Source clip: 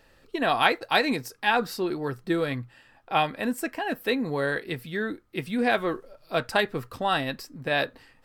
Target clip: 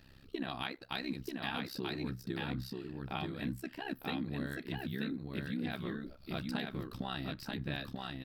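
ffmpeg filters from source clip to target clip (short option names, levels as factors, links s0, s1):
-filter_complex "[0:a]equalizer=f=125:t=o:w=1:g=7,equalizer=f=250:t=o:w=1:g=6,equalizer=f=500:t=o:w=1:g=-10,equalizer=f=1000:t=o:w=1:g=-4,equalizer=f=2000:t=o:w=1:g=-3,equalizer=f=4000:t=o:w=1:g=4,equalizer=f=8000:t=o:w=1:g=-8,acompressor=threshold=0.0126:ratio=4,tremolo=f=66:d=0.947,asplit=2[s0][s1];[s1]aecho=0:1:936:0.708[s2];[s0][s2]amix=inputs=2:normalize=0,volume=1.41"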